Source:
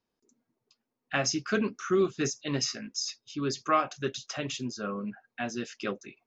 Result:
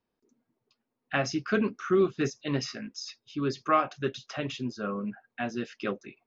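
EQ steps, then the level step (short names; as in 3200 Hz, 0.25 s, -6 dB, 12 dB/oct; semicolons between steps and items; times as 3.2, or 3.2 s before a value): air absorption 170 m; +2.0 dB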